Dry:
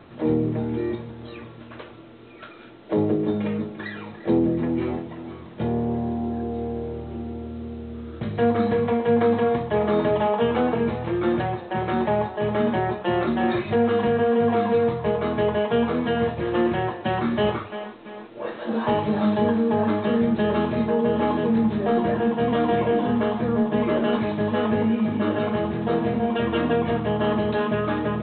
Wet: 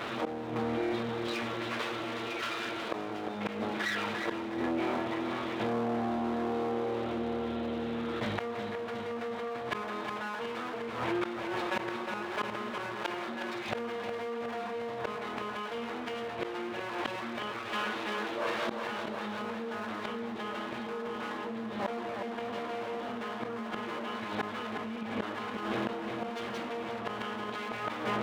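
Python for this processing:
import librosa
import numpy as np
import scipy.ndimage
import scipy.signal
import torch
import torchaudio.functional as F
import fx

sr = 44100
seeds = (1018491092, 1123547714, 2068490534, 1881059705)

p1 = fx.lower_of_two(x, sr, delay_ms=8.8)
p2 = fx.low_shelf(p1, sr, hz=440.0, db=-10.5)
p3 = fx.gate_flip(p2, sr, shuts_db=-22.0, range_db=-25)
p4 = fx.highpass(p3, sr, hz=190.0, slope=6)
p5 = p4 + fx.echo_feedback(p4, sr, ms=362, feedback_pct=56, wet_db=-16.5, dry=0)
y = fx.env_flatten(p5, sr, amount_pct=70)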